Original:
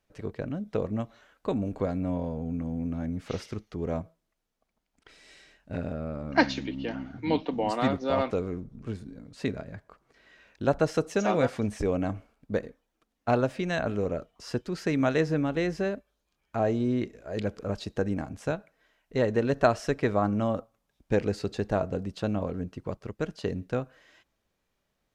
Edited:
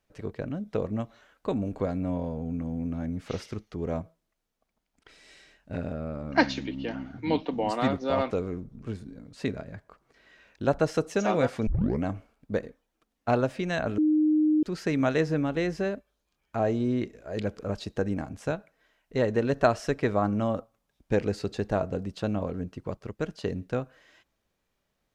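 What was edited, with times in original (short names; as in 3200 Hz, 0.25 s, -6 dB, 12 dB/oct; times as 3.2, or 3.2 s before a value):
11.67 tape start 0.36 s
13.98–14.63 bleep 307 Hz -19 dBFS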